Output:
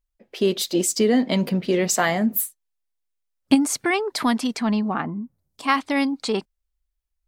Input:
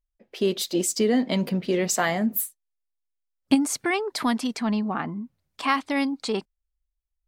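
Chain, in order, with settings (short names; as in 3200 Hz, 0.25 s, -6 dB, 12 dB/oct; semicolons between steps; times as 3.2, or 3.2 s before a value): 5.01–5.67 bell 6300 Hz -> 1500 Hz -14.5 dB 2.3 oct; gain +3 dB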